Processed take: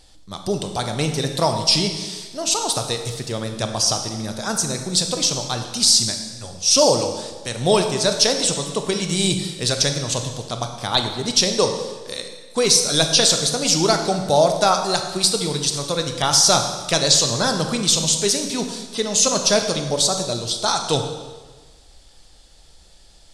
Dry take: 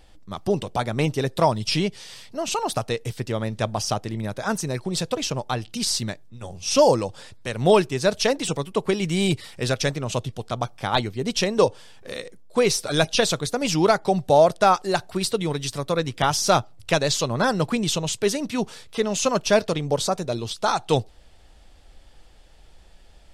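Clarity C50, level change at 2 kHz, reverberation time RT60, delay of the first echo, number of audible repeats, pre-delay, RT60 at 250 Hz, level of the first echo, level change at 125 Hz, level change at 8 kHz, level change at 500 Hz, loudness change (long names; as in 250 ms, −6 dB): 6.5 dB, +0.5 dB, 1.4 s, no echo audible, no echo audible, 21 ms, 1.3 s, no echo audible, +0.5 dB, +11.0 dB, 0.0 dB, +4.5 dB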